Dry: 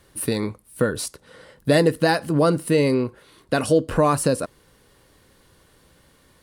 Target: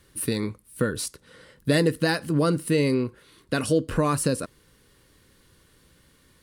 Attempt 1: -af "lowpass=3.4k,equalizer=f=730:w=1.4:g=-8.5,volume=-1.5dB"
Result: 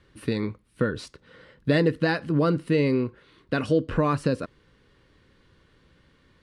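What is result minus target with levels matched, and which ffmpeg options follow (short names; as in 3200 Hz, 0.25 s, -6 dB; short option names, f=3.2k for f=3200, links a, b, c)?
4000 Hz band -4.5 dB
-af "equalizer=f=730:w=1.4:g=-8.5,volume=-1.5dB"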